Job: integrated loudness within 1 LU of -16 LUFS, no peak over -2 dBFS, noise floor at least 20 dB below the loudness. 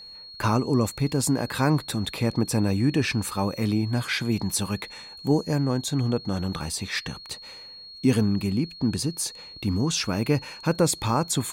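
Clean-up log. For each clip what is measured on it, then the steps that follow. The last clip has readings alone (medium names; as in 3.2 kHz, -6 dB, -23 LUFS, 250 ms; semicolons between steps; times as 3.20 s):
steady tone 4.3 kHz; tone level -41 dBFS; loudness -25.5 LUFS; peak level -9.5 dBFS; loudness target -16.0 LUFS
-> band-stop 4.3 kHz, Q 30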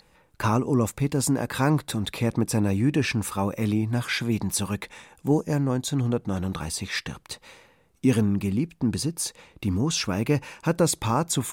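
steady tone not found; loudness -25.5 LUFS; peak level -9.5 dBFS; loudness target -16.0 LUFS
-> trim +9.5 dB; peak limiter -2 dBFS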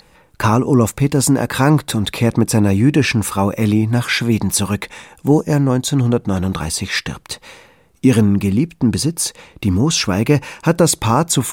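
loudness -16.5 LUFS; peak level -2.0 dBFS; noise floor -52 dBFS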